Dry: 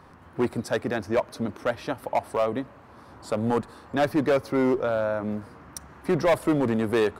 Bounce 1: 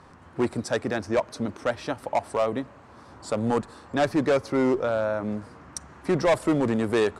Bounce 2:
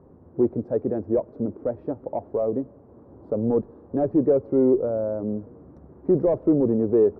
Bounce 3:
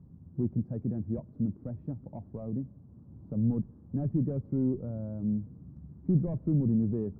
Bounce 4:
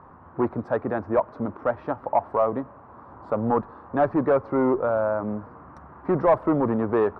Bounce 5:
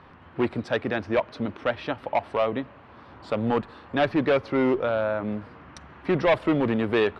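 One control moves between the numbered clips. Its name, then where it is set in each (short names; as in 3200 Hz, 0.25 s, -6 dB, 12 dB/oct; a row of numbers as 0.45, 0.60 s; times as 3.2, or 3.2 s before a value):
synth low-pass, frequency: 7900, 440, 170, 1100, 3100 Hz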